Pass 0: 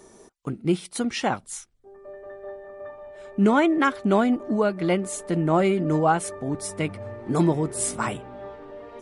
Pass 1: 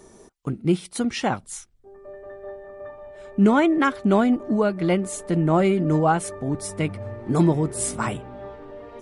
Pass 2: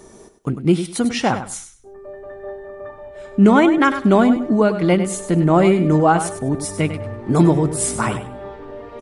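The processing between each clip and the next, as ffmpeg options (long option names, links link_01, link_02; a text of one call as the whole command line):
ffmpeg -i in.wav -af "lowshelf=frequency=180:gain=6.5" out.wav
ffmpeg -i in.wav -af "aecho=1:1:99|198|297:0.299|0.0627|0.0132,volume=5dB" out.wav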